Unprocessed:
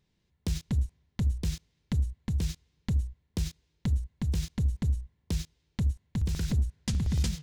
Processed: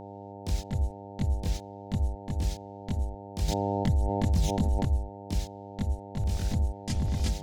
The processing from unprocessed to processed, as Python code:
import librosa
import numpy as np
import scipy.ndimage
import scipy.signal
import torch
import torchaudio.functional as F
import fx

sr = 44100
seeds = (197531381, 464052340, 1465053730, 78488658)

y = fx.chorus_voices(x, sr, voices=4, hz=0.88, base_ms=22, depth_ms=2.2, mix_pct=60)
y = fx.dmg_buzz(y, sr, base_hz=100.0, harmonics=9, level_db=-45.0, tilt_db=-1, odd_only=False)
y = fx.env_flatten(y, sr, amount_pct=70, at=(3.48, 4.85))
y = F.gain(torch.from_numpy(y), 2.0).numpy()